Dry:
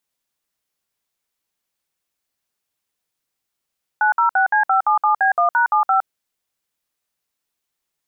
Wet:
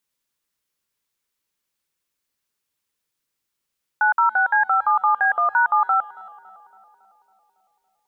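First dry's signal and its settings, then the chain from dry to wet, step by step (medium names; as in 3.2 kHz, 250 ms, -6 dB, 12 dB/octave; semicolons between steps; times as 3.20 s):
DTMF "906C577B1#75", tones 112 ms, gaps 59 ms, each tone -15.5 dBFS
peaking EQ 710 Hz -8.5 dB 0.31 oct; tape echo 278 ms, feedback 76%, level -18 dB, low-pass 1.1 kHz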